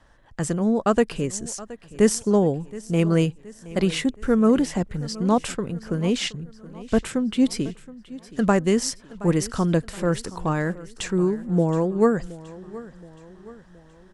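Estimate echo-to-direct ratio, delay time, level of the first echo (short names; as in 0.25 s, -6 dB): -17.5 dB, 0.722 s, -18.5 dB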